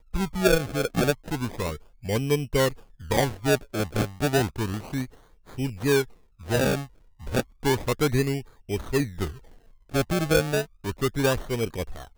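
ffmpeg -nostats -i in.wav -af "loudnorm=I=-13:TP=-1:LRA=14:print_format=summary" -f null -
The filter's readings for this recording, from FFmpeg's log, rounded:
Input Integrated:    -26.4 LUFS
Input True Peak:      -8.6 dBTP
Input LRA:             1.4 LU
Input Threshold:     -37.0 LUFS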